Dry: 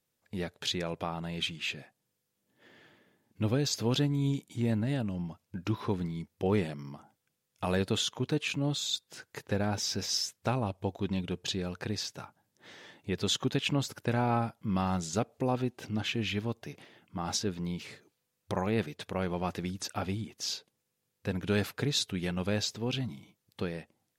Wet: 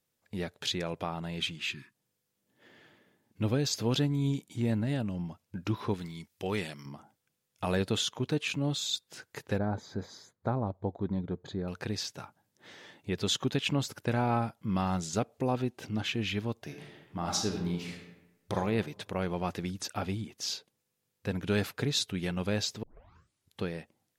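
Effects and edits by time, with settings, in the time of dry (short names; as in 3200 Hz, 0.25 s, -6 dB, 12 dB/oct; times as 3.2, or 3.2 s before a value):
1.68–1.94 spectral delete 400–920 Hz
5.94–6.86 tilt shelf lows -6.5 dB, about 1300 Hz
9.58–11.68 running mean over 16 samples
16.63–18.55 reverb throw, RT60 0.98 s, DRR 2.5 dB
22.83 tape start 0.78 s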